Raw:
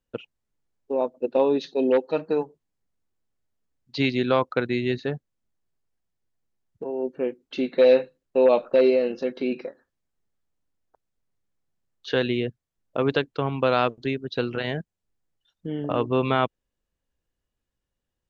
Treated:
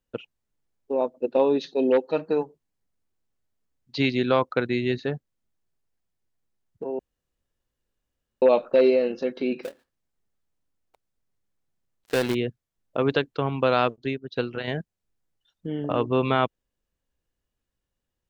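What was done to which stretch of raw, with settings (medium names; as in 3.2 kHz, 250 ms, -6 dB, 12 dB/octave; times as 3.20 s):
6.99–8.42 s: room tone
9.63–12.35 s: dead-time distortion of 0.2 ms
13.96–14.68 s: upward expansion, over -46 dBFS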